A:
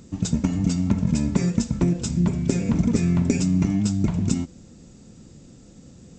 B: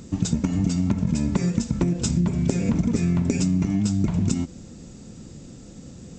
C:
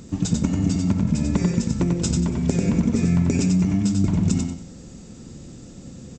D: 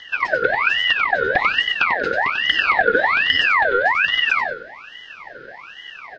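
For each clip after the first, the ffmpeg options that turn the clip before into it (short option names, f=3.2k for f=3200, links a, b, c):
-af "acompressor=threshold=-23dB:ratio=6,volume=5dB"
-af "aecho=1:1:93|186|279|372:0.631|0.177|0.0495|0.0139"
-af "highpass=f=190:t=q:w=0.5412,highpass=f=190:t=q:w=1.307,lowpass=f=3.3k:t=q:w=0.5176,lowpass=f=3.3k:t=q:w=0.7071,lowpass=f=3.3k:t=q:w=1.932,afreqshift=260,aeval=exprs='val(0)*sin(2*PI*1700*n/s+1700*0.45/1.2*sin(2*PI*1.2*n/s))':c=same,volume=8.5dB"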